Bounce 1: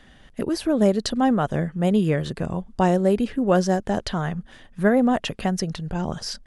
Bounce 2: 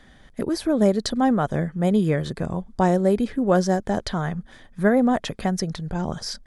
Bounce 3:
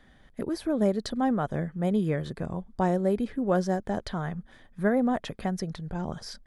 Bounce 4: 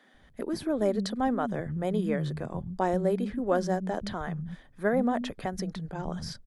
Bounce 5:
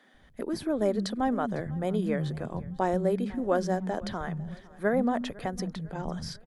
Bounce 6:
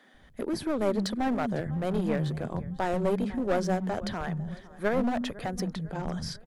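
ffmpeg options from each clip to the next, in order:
-af "bandreject=f=2.8k:w=5.7"
-af "equalizer=f=6.6k:w=0.79:g=-5,volume=-6dB"
-filter_complex "[0:a]acrossover=split=210[a][b];[a]adelay=140[c];[c][b]amix=inputs=2:normalize=0"
-af "aecho=1:1:502|1004|1506:0.0794|0.0381|0.0183"
-af "aeval=exprs='clip(val(0),-1,0.0376)':c=same,volume=2dB"

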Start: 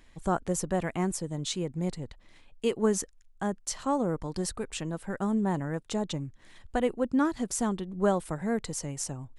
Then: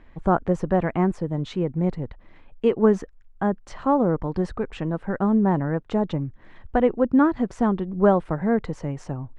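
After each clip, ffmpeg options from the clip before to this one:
-af "lowpass=1.7k,volume=8dB"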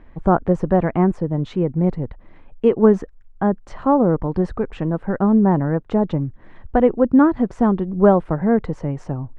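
-af "highshelf=f=2.1k:g=-10,volume=5dB"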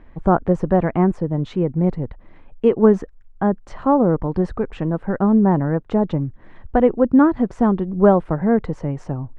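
-af anull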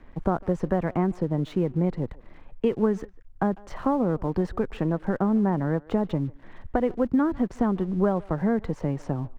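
-filter_complex "[0:a]acrossover=split=180|1600[a][b][c];[a]acompressor=threshold=-31dB:ratio=4[d];[b]acompressor=threshold=-23dB:ratio=4[e];[c]acompressor=threshold=-42dB:ratio=4[f];[d][e][f]amix=inputs=3:normalize=0,aeval=exprs='sgn(val(0))*max(abs(val(0))-0.00251,0)':c=same,asplit=2[g][h];[h]adelay=150,highpass=300,lowpass=3.4k,asoftclip=type=hard:threshold=-18.5dB,volume=-22dB[i];[g][i]amix=inputs=2:normalize=0"

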